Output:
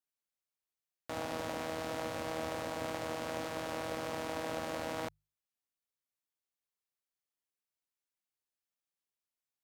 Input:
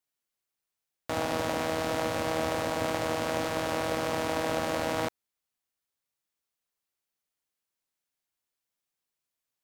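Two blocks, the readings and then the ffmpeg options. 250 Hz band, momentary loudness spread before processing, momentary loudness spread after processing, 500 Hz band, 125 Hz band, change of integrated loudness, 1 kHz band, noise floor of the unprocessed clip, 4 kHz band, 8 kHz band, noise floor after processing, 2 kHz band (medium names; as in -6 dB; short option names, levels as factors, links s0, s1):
-8.5 dB, 3 LU, 3 LU, -8.5 dB, -9.0 dB, -8.5 dB, -8.5 dB, under -85 dBFS, -8.5 dB, -8.5 dB, under -85 dBFS, -8.5 dB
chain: -af "bandreject=f=50:t=h:w=6,bandreject=f=100:t=h:w=6,bandreject=f=150:t=h:w=6,volume=0.376"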